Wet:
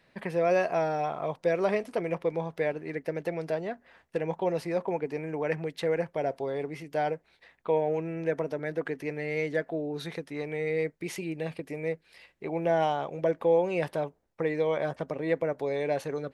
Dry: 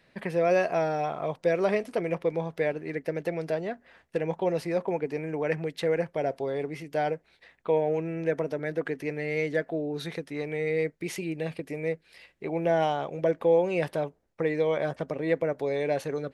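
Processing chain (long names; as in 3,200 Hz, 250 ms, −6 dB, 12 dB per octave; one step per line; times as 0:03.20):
parametric band 950 Hz +3 dB 0.77 octaves
level −2 dB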